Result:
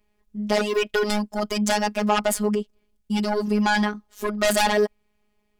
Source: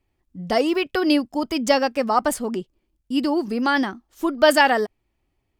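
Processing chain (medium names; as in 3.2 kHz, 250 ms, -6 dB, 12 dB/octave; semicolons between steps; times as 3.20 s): in parallel at -6 dB: sine folder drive 14 dB, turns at -3 dBFS; on the sum: robot voice 209 Hz; trim -8 dB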